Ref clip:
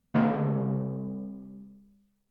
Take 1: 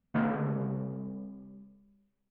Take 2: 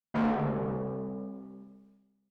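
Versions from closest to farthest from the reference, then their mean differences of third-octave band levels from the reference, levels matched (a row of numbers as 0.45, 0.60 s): 1, 2; 1.0, 3.5 dB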